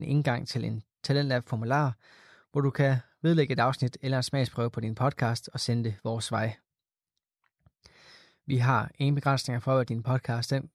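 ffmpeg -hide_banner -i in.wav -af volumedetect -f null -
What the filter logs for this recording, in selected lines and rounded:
mean_volume: -28.8 dB
max_volume: -12.1 dB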